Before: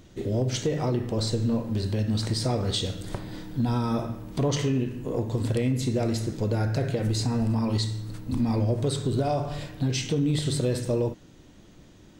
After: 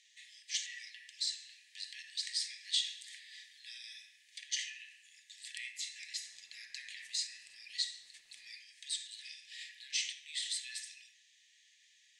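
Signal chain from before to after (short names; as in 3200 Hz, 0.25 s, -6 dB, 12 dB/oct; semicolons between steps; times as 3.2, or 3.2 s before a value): Chebyshev high-pass 1700 Hz, order 10; 6.25–8.52 crackle 220/s -57 dBFS; LPF 9100 Hz 24 dB/oct; shoebox room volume 3600 m³, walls furnished, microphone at 0.86 m; gain -2.5 dB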